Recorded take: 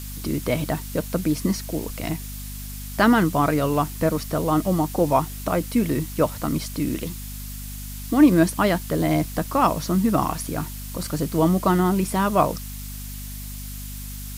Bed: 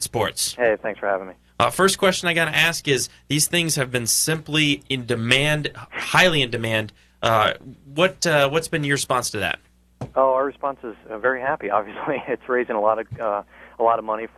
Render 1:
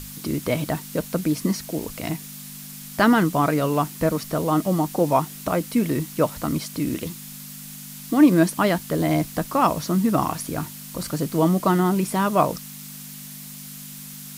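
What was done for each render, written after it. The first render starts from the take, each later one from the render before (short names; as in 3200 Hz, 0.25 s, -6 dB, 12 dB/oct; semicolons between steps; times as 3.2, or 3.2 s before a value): notches 50/100 Hz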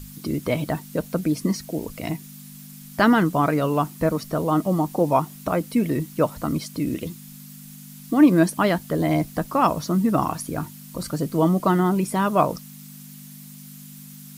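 denoiser 8 dB, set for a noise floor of -39 dBFS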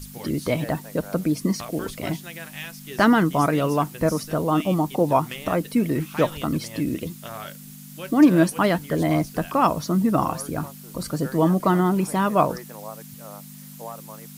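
add bed -19 dB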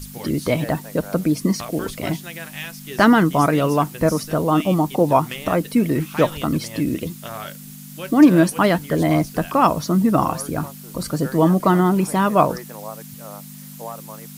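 gain +3.5 dB; limiter -2 dBFS, peak gain reduction 2 dB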